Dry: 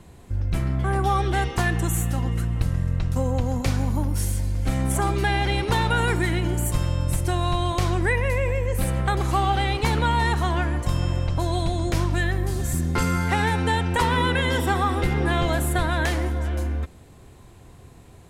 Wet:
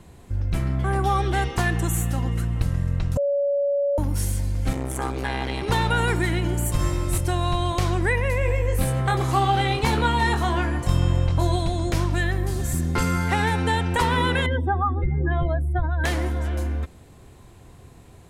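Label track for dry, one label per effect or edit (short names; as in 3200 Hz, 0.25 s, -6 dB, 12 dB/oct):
3.170000	3.980000	bleep 566 Hz -19 dBFS
4.730000	5.680000	core saturation saturates under 600 Hz
6.770000	7.180000	flutter echo walls apart 3.4 m, dies away in 1.1 s
8.390000	11.560000	doubler 23 ms -5.5 dB
14.460000	16.040000	spectral contrast raised exponent 2.2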